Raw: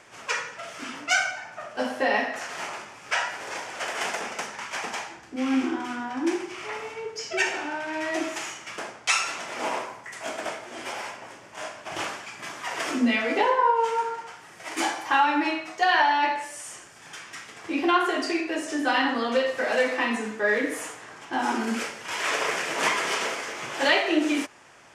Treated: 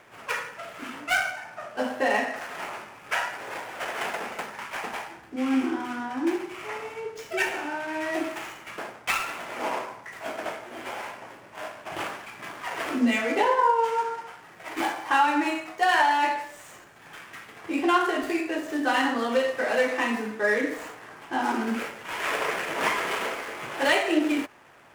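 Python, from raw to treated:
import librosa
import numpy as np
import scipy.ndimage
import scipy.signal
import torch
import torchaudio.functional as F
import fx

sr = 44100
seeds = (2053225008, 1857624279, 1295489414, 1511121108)

y = scipy.ndimage.median_filter(x, 9, mode='constant')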